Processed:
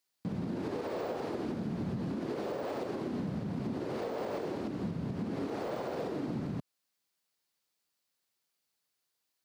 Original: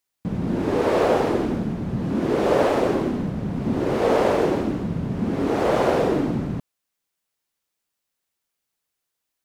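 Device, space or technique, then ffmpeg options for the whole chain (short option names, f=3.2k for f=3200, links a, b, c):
broadcast voice chain: -af "highpass=92,deesser=0.95,acompressor=threshold=-24dB:ratio=6,equalizer=f=4.5k:t=o:w=0.47:g=5.5,alimiter=level_in=1dB:limit=-24dB:level=0:latency=1:release=258,volume=-1dB,volume=-2.5dB"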